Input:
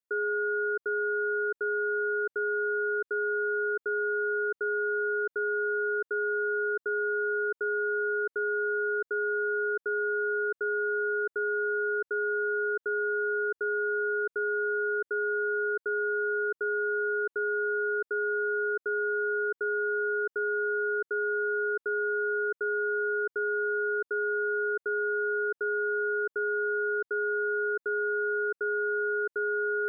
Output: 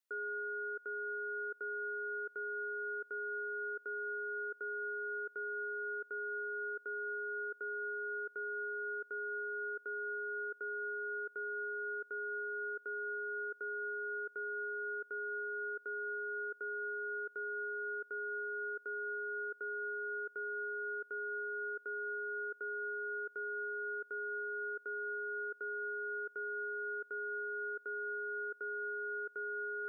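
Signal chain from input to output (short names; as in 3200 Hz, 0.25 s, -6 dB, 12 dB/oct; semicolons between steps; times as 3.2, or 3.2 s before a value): HPF 690 Hz 6 dB/oct; limiter -36.5 dBFS, peak gain reduction 10.5 dB; on a send: thin delay 0.295 s, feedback 79%, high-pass 1400 Hz, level -21 dB; on the sum: gain +2.5 dB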